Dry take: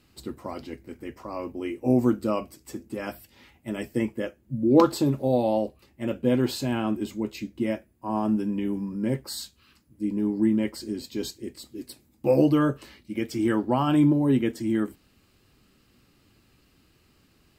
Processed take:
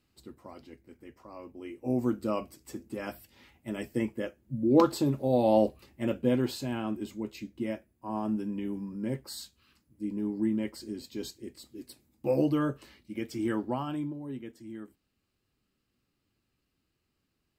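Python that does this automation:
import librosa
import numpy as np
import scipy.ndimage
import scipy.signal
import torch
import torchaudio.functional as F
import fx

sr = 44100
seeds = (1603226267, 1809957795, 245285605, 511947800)

y = fx.gain(x, sr, db=fx.line((1.5, -12.0), (2.37, -4.0), (5.28, -4.0), (5.64, 3.5), (6.58, -6.5), (13.66, -6.5), (14.12, -17.5)))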